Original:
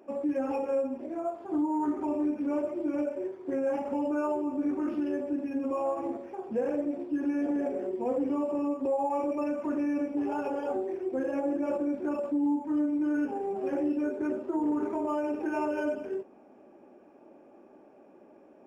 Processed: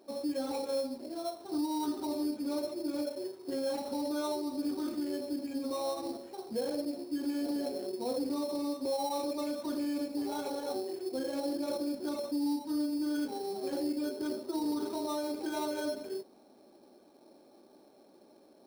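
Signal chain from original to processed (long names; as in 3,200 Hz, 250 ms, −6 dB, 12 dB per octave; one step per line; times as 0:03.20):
sample-rate reduction 4,800 Hz, jitter 0%
level −4.5 dB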